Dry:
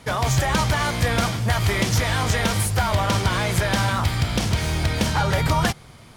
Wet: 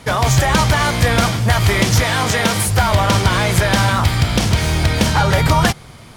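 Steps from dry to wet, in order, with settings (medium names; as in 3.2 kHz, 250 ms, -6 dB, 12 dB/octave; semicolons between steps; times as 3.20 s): 2.03–2.68 s: high-pass 130 Hz 12 dB/octave; trim +6.5 dB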